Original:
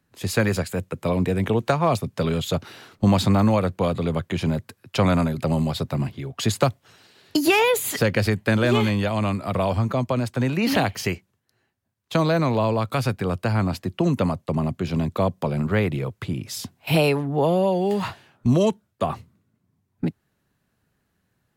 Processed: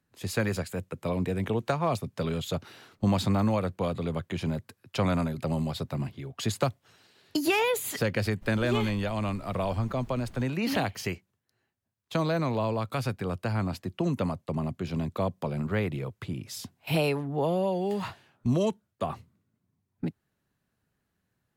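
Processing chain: 8.41–10.43 s: added noise brown -38 dBFS; trim -7 dB

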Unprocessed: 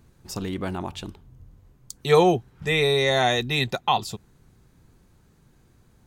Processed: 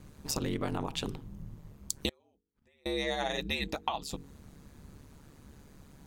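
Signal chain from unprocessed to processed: hum notches 50/100/150/200/250/300/350/400 Hz; compression 12:1, threshold -34 dBFS, peak gain reduction 21.5 dB; band-stop 1.5 kHz, Q 23; ring modulator 72 Hz; 2.09–2.86 s: inverted gate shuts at -52 dBFS, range -36 dB; trim +7.5 dB

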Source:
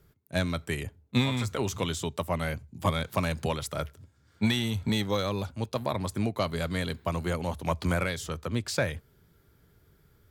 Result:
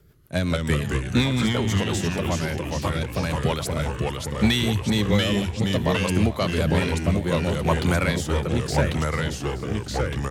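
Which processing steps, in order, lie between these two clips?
in parallel at -5 dB: hard clipper -23.5 dBFS, distortion -13 dB; on the sum: vibrato 11 Hz 5.4 cents; feedback delay 438 ms, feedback 44%, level -17 dB; rotary cabinet horn 5.5 Hz, later 0.6 Hz, at 2.97 s; 1.54–3.33 s: compression 2.5:1, threshold -28 dBFS, peak gain reduction 5.5 dB; ever faster or slower copies 137 ms, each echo -2 st, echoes 3; trim +3.5 dB

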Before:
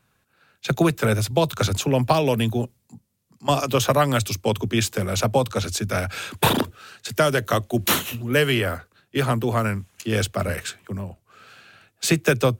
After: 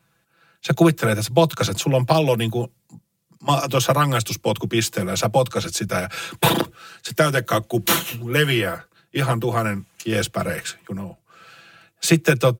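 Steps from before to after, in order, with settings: high-pass 47 Hz; comb 6 ms, depth 70%

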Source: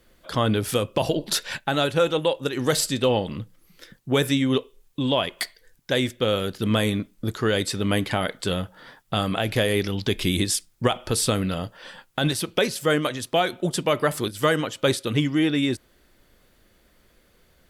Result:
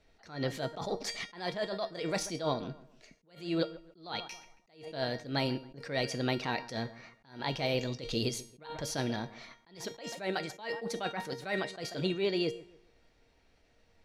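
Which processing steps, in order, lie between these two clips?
feedback comb 370 Hz, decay 0.58 s, mix 80%; feedback echo behind a low-pass 174 ms, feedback 32%, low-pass 1.6 kHz, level -17.5 dB; wide varispeed 1.26×; low-pass 5.6 kHz 12 dB/octave; attacks held to a fixed rise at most 140 dB/s; trim +5 dB

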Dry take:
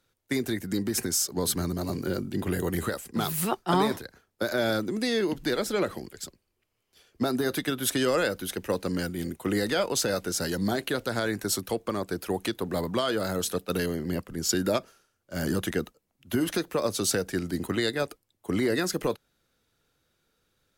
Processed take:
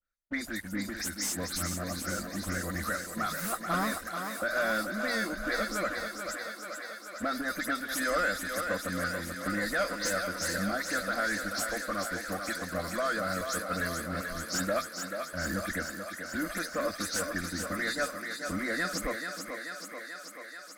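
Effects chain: delay that grows with frequency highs late, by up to 101 ms; peaking EQ 370 Hz -14 dB 2.4 oct; static phaser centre 600 Hz, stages 8; waveshaping leveller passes 3; low-pass 2.8 kHz 6 dB/octave; peaking EQ 140 Hz -13.5 dB 0.38 oct; thinning echo 435 ms, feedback 75%, high-pass 250 Hz, level -6 dB; trim -3 dB

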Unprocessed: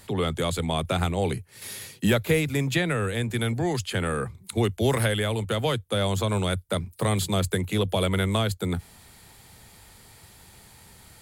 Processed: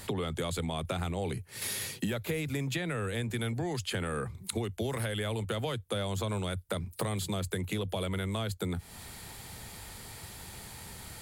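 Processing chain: in parallel at +1 dB: peak limiter -21 dBFS, peak gain reduction 10 dB; on the sum: compression 5:1, threshold -30 dBFS, peak gain reduction 14.5 dB; trim -1.5 dB

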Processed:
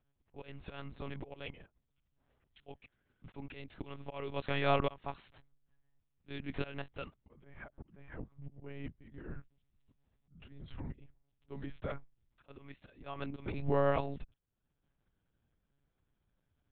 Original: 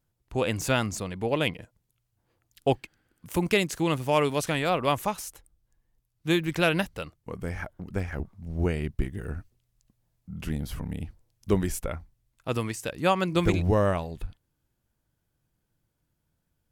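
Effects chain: slow attack 673 ms; monotone LPC vocoder at 8 kHz 140 Hz; trim -2.5 dB

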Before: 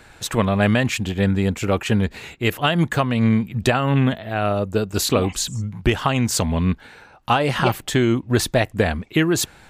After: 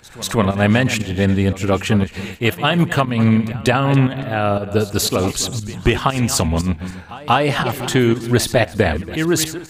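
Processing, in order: backward echo that repeats 141 ms, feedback 46%, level -12 dB; volume shaper 118 bpm, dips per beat 1, -11 dB, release 216 ms; pre-echo 189 ms -19 dB; trim +3 dB

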